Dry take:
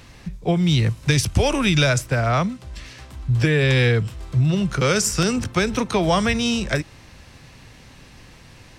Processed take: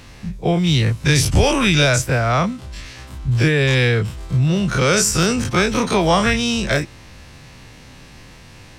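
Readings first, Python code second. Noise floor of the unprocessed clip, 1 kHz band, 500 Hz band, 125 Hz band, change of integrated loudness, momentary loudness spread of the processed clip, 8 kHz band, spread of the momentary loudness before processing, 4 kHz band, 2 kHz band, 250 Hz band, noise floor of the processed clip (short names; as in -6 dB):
-46 dBFS, +4.0 dB, +3.0 dB, +2.0 dB, +3.0 dB, 10 LU, +5.0 dB, 12 LU, +4.0 dB, +4.0 dB, +2.5 dB, -42 dBFS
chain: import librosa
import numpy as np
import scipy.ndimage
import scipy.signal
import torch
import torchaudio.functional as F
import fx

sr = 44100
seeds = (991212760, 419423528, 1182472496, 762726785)

y = fx.spec_dilate(x, sr, span_ms=60)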